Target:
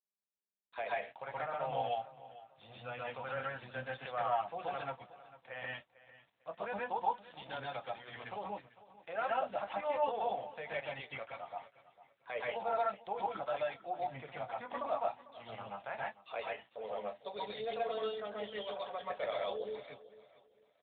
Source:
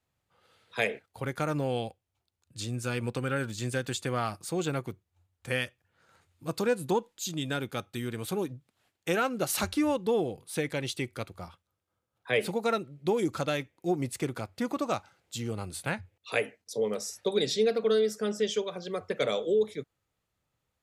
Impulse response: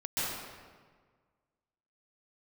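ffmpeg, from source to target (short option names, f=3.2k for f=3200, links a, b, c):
-filter_complex "[0:a]asplit=2[a][b];[b]alimiter=limit=-22dB:level=0:latency=1:release=227,volume=1dB[c];[a][c]amix=inputs=2:normalize=0,highpass=f=120:w=0.5412,highpass=f=120:w=1.3066,bandreject=f=60:t=h:w=6,bandreject=f=120:t=h:w=6,bandreject=f=180:t=h:w=6,bandreject=f=240:t=h:w=6,bandreject=f=300:t=h:w=6,deesser=0.9,lowshelf=f=470:t=q:w=3:g=-12,agate=range=-33dB:threshold=-55dB:ratio=3:detection=peak,flanger=delay=8.8:depth=1.1:regen=-43:speed=0.56:shape=sinusoidal,aresample=11025,aeval=exprs='val(0)*gte(abs(val(0)),0.00335)':c=same,aresample=44100,asplit=2[d][e];[e]adelay=25,volume=-13.5dB[f];[d][f]amix=inputs=2:normalize=0,aecho=1:1:449|898|1347:0.133|0.04|0.012[g];[1:a]atrim=start_sample=2205,atrim=end_sample=6174[h];[g][h]afir=irnorm=-1:irlink=0,volume=-5.5dB" -ar 8000 -c:a libopencore_amrnb -b:a 12200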